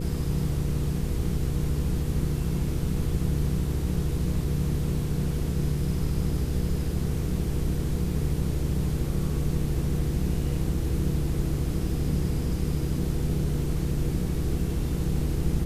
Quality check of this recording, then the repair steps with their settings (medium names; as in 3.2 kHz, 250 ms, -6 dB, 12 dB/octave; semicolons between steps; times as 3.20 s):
hum 60 Hz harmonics 8 -31 dBFS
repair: de-hum 60 Hz, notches 8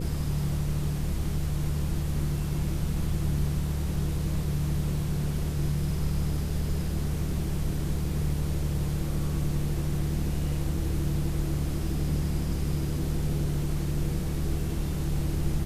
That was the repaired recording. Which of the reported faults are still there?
nothing left